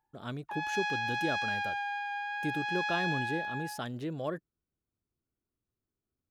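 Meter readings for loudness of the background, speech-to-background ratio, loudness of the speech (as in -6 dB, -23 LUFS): -33.5 LUFS, -4.0 dB, -37.5 LUFS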